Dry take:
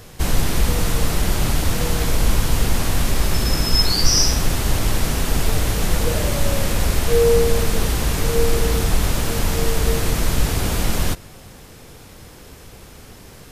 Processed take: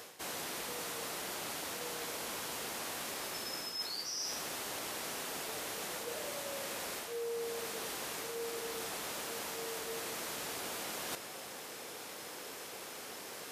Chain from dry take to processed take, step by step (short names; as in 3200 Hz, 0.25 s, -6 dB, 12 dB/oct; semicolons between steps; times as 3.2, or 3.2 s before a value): HPF 420 Hz 12 dB/oct; reverse; compressor 5:1, threshold -40 dBFS, peak gain reduction 22.5 dB; reverse